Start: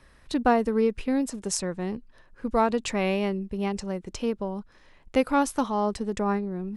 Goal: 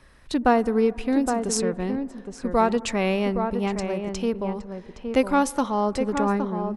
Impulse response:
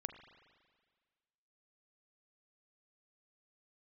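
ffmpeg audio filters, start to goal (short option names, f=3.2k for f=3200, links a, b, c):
-filter_complex "[0:a]asplit=2[a][b];[b]adelay=816.3,volume=-6dB,highshelf=f=4k:g=-18.4[c];[a][c]amix=inputs=2:normalize=0,asplit=2[d][e];[1:a]atrim=start_sample=2205,asetrate=23814,aresample=44100[f];[e][f]afir=irnorm=-1:irlink=0,volume=-10.5dB[g];[d][g]amix=inputs=2:normalize=0"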